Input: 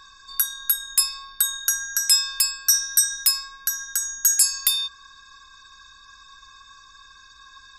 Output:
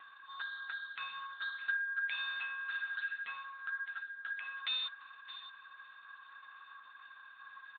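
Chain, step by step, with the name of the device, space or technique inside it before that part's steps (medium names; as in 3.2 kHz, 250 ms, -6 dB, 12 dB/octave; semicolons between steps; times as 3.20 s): satellite phone (band-pass 350–3200 Hz; delay 615 ms -14.5 dB; AMR-NB 6.7 kbps 8 kHz)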